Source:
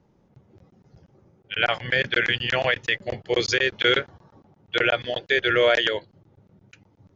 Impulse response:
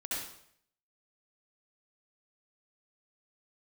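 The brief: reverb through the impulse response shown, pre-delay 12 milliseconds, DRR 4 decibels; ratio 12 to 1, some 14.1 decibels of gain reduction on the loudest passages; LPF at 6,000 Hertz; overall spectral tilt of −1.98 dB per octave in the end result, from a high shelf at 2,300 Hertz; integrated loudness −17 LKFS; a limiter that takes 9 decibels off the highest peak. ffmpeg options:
-filter_complex "[0:a]lowpass=6000,highshelf=frequency=2300:gain=-6.5,acompressor=threshold=-30dB:ratio=12,alimiter=level_in=2dB:limit=-24dB:level=0:latency=1,volume=-2dB,asplit=2[link_01][link_02];[1:a]atrim=start_sample=2205,adelay=12[link_03];[link_02][link_03]afir=irnorm=-1:irlink=0,volume=-7dB[link_04];[link_01][link_04]amix=inputs=2:normalize=0,volume=19dB"

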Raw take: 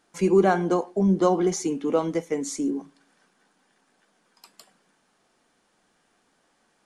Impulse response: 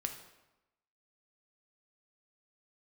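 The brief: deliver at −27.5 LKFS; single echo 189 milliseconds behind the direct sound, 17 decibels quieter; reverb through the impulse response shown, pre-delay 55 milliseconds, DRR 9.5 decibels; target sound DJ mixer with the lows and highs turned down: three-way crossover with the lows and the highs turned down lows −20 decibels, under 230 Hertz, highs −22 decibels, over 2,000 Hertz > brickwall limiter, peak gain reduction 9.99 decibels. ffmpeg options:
-filter_complex "[0:a]aecho=1:1:189:0.141,asplit=2[link_01][link_02];[1:a]atrim=start_sample=2205,adelay=55[link_03];[link_02][link_03]afir=irnorm=-1:irlink=0,volume=-10dB[link_04];[link_01][link_04]amix=inputs=2:normalize=0,acrossover=split=230 2000:gain=0.1 1 0.0794[link_05][link_06][link_07];[link_05][link_06][link_07]amix=inputs=3:normalize=0,volume=1.5dB,alimiter=limit=-18.5dB:level=0:latency=1"

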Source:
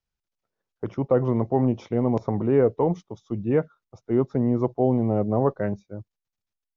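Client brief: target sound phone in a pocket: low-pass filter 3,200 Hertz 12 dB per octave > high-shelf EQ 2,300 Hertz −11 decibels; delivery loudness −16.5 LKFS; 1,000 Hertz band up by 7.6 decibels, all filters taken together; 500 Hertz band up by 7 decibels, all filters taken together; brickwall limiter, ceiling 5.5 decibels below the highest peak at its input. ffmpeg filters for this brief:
ffmpeg -i in.wav -af "equalizer=frequency=500:width_type=o:gain=7,equalizer=frequency=1000:width_type=o:gain=9,alimiter=limit=-7dB:level=0:latency=1,lowpass=3200,highshelf=frequency=2300:gain=-11,volume=4dB" out.wav

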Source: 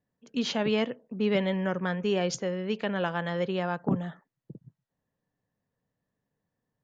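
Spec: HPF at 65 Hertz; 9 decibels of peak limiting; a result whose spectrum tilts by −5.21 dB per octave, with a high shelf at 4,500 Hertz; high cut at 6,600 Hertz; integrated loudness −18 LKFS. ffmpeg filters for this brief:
ffmpeg -i in.wav -af "highpass=65,lowpass=6600,highshelf=frequency=4500:gain=-6.5,volume=16dB,alimiter=limit=-8dB:level=0:latency=1" out.wav

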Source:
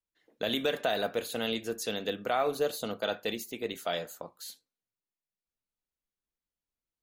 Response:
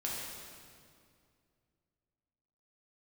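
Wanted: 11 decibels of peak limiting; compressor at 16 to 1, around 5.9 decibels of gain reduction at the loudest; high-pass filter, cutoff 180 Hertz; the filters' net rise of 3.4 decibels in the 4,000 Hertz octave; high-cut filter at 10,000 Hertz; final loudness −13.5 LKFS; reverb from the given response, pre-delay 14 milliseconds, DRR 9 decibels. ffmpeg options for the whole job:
-filter_complex "[0:a]highpass=180,lowpass=10000,equalizer=frequency=4000:width_type=o:gain=4,acompressor=threshold=-29dB:ratio=16,alimiter=level_in=5.5dB:limit=-24dB:level=0:latency=1,volume=-5.5dB,asplit=2[link_01][link_02];[1:a]atrim=start_sample=2205,adelay=14[link_03];[link_02][link_03]afir=irnorm=-1:irlink=0,volume=-12.5dB[link_04];[link_01][link_04]amix=inputs=2:normalize=0,volume=26.5dB"

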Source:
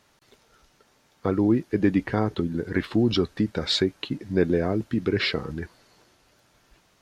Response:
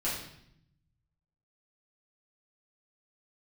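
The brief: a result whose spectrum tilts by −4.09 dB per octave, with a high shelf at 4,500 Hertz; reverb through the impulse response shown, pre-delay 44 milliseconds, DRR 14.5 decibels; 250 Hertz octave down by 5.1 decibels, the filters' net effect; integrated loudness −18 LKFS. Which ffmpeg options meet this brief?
-filter_complex "[0:a]equalizer=frequency=250:width_type=o:gain=-7,highshelf=frequency=4500:gain=3,asplit=2[link_01][link_02];[1:a]atrim=start_sample=2205,adelay=44[link_03];[link_02][link_03]afir=irnorm=-1:irlink=0,volume=-21dB[link_04];[link_01][link_04]amix=inputs=2:normalize=0,volume=9.5dB"

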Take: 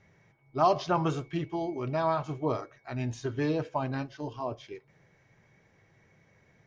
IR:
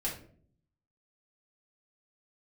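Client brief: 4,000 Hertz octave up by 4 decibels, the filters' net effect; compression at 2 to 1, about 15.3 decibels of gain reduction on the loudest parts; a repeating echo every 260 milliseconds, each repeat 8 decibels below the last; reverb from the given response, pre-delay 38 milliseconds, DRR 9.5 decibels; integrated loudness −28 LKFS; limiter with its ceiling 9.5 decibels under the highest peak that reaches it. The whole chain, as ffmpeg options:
-filter_complex "[0:a]equalizer=frequency=4000:width_type=o:gain=5,acompressor=threshold=-48dB:ratio=2,alimiter=level_in=12.5dB:limit=-24dB:level=0:latency=1,volume=-12.5dB,aecho=1:1:260|520|780|1040|1300:0.398|0.159|0.0637|0.0255|0.0102,asplit=2[link_01][link_02];[1:a]atrim=start_sample=2205,adelay=38[link_03];[link_02][link_03]afir=irnorm=-1:irlink=0,volume=-13dB[link_04];[link_01][link_04]amix=inputs=2:normalize=0,volume=17dB"

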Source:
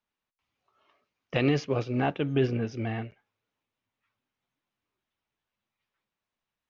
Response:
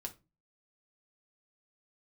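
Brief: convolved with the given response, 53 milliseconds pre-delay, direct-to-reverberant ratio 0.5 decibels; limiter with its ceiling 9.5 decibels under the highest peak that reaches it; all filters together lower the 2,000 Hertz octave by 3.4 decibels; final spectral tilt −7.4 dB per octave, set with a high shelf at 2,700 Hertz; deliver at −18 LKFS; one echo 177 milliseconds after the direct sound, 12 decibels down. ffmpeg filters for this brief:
-filter_complex "[0:a]equalizer=frequency=2000:width_type=o:gain=-3,highshelf=frequency=2700:gain=-3,alimiter=limit=-23dB:level=0:latency=1,aecho=1:1:177:0.251,asplit=2[link_01][link_02];[1:a]atrim=start_sample=2205,adelay=53[link_03];[link_02][link_03]afir=irnorm=-1:irlink=0,volume=2dB[link_04];[link_01][link_04]amix=inputs=2:normalize=0,volume=11.5dB"

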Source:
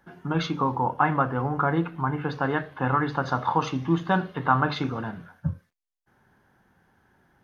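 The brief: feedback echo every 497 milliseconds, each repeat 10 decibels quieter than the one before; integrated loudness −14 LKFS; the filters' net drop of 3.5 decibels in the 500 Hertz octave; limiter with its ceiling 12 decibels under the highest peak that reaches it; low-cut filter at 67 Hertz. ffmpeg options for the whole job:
ffmpeg -i in.wav -af "highpass=67,equalizer=frequency=500:width_type=o:gain=-4.5,alimiter=limit=-19dB:level=0:latency=1,aecho=1:1:497|994|1491|1988:0.316|0.101|0.0324|0.0104,volume=16dB" out.wav

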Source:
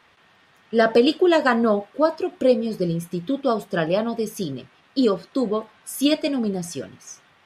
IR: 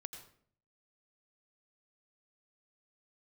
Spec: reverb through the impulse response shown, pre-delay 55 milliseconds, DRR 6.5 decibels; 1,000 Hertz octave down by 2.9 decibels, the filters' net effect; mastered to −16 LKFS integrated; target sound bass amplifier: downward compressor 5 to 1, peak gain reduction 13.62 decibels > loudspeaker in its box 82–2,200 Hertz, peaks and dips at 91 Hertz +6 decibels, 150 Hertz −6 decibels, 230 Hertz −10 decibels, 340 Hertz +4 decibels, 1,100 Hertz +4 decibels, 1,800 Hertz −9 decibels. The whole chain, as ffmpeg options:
-filter_complex "[0:a]equalizer=frequency=1000:width_type=o:gain=-5.5,asplit=2[link_01][link_02];[1:a]atrim=start_sample=2205,adelay=55[link_03];[link_02][link_03]afir=irnorm=-1:irlink=0,volume=-3dB[link_04];[link_01][link_04]amix=inputs=2:normalize=0,acompressor=threshold=-26dB:ratio=5,highpass=frequency=82:width=0.5412,highpass=frequency=82:width=1.3066,equalizer=frequency=91:width_type=q:width=4:gain=6,equalizer=frequency=150:width_type=q:width=4:gain=-6,equalizer=frequency=230:width_type=q:width=4:gain=-10,equalizer=frequency=340:width_type=q:width=4:gain=4,equalizer=frequency=1100:width_type=q:width=4:gain=4,equalizer=frequency=1800:width_type=q:width=4:gain=-9,lowpass=frequency=2200:width=0.5412,lowpass=frequency=2200:width=1.3066,volume=15.5dB"

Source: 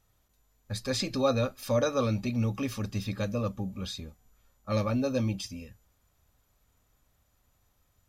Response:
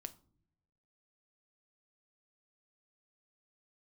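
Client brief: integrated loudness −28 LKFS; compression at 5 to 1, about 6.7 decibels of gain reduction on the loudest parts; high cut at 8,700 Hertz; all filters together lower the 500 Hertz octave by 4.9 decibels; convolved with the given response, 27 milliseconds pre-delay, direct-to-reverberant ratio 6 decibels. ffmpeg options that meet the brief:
-filter_complex "[0:a]lowpass=8700,equalizer=frequency=500:width_type=o:gain=-5.5,acompressor=threshold=-32dB:ratio=5,asplit=2[link_01][link_02];[1:a]atrim=start_sample=2205,adelay=27[link_03];[link_02][link_03]afir=irnorm=-1:irlink=0,volume=-1.5dB[link_04];[link_01][link_04]amix=inputs=2:normalize=0,volume=8dB"

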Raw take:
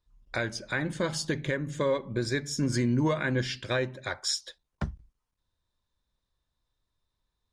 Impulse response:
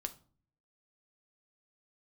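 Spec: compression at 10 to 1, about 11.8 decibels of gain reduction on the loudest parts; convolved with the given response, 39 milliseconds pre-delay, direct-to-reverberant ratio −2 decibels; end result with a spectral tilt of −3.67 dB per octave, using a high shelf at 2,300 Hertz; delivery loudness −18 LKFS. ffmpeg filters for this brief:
-filter_complex "[0:a]highshelf=frequency=2300:gain=6,acompressor=threshold=-34dB:ratio=10,asplit=2[link_01][link_02];[1:a]atrim=start_sample=2205,adelay=39[link_03];[link_02][link_03]afir=irnorm=-1:irlink=0,volume=3.5dB[link_04];[link_01][link_04]amix=inputs=2:normalize=0,volume=16dB"

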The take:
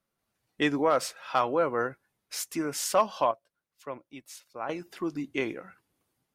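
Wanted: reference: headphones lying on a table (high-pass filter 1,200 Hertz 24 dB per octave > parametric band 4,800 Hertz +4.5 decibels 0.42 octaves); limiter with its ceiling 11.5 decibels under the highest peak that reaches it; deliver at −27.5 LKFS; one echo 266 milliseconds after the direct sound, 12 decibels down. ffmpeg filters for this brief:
ffmpeg -i in.wav -af "alimiter=limit=-24dB:level=0:latency=1,highpass=frequency=1200:width=0.5412,highpass=frequency=1200:width=1.3066,equalizer=frequency=4800:width_type=o:width=0.42:gain=4.5,aecho=1:1:266:0.251,volume=11.5dB" out.wav

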